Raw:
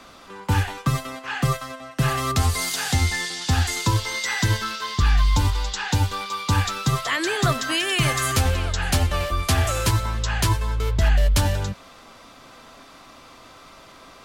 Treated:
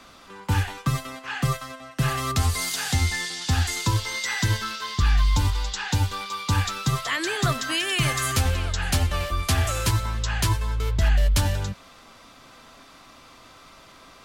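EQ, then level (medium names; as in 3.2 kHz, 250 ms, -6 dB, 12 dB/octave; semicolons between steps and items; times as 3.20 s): peaking EQ 530 Hz -3 dB 2.2 oct; -1.5 dB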